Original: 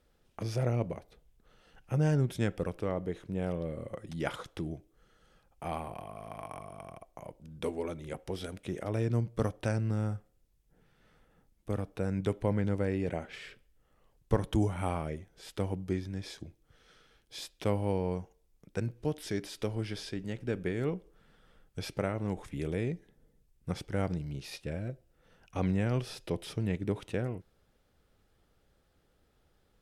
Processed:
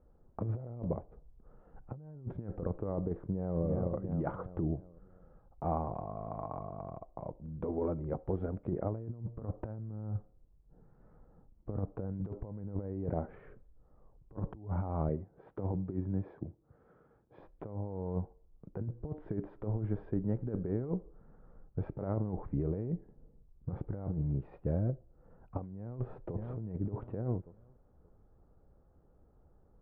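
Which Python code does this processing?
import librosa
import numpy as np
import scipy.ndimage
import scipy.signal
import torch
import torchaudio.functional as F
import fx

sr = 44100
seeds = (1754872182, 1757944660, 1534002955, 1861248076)

y = fx.echo_throw(x, sr, start_s=3.16, length_s=0.46, ms=340, feedback_pct=45, wet_db=-7.0)
y = fx.highpass(y, sr, hz=99.0, slope=12, at=(15.09, 17.4))
y = fx.echo_throw(y, sr, start_s=25.78, length_s=0.7, ms=580, feedback_pct=30, wet_db=-17.5)
y = scipy.signal.sosfilt(scipy.signal.butter(4, 1100.0, 'lowpass', fs=sr, output='sos'), y)
y = fx.low_shelf(y, sr, hz=160.0, db=5.0)
y = fx.over_compress(y, sr, threshold_db=-33.0, ratio=-0.5)
y = y * 10.0 ** (-1.0 / 20.0)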